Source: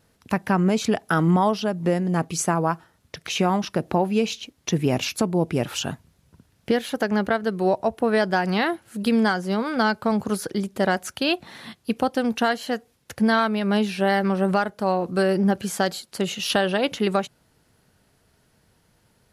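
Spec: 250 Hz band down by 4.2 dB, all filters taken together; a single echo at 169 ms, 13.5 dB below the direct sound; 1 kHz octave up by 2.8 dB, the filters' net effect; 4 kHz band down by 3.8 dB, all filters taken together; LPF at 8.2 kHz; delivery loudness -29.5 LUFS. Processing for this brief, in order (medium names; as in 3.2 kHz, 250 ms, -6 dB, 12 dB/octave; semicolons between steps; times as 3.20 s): low-pass 8.2 kHz; peaking EQ 250 Hz -6 dB; peaking EQ 1 kHz +4.5 dB; peaking EQ 4 kHz -5.5 dB; delay 169 ms -13.5 dB; trim -5.5 dB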